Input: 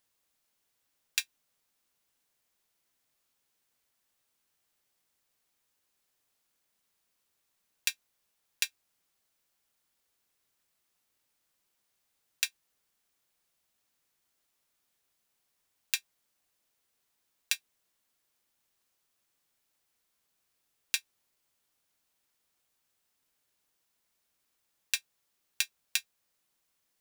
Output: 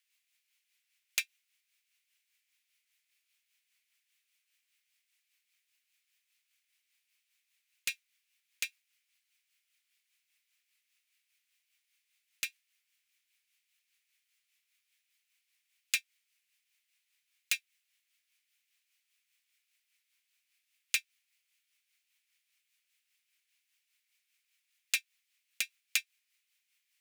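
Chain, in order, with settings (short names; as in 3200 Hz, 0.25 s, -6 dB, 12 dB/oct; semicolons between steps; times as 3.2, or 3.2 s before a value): self-modulated delay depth 0.35 ms; resonant high-pass 2300 Hz, resonance Q 3; soft clip -16.5 dBFS, distortion -16 dB; rotary speaker horn 5 Hz; gain +1.5 dB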